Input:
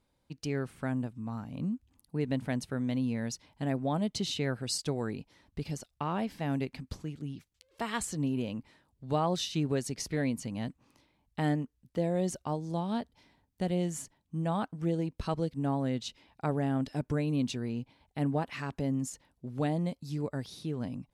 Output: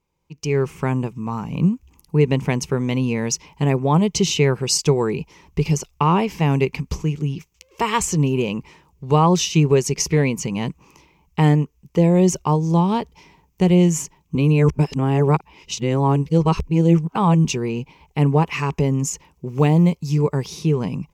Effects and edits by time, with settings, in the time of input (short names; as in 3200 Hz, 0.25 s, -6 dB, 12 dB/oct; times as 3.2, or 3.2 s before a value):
14.35–17.45 reverse
19.48–20.15 short-mantissa float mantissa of 6-bit
whole clip: ripple EQ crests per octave 0.76, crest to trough 11 dB; AGC gain up to 16 dB; gain -2 dB